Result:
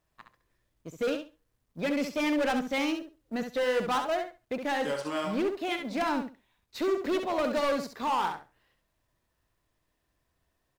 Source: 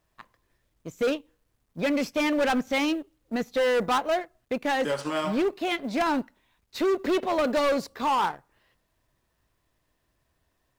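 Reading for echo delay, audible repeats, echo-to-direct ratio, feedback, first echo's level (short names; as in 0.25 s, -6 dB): 67 ms, 2, -7.0 dB, 18%, -7.0 dB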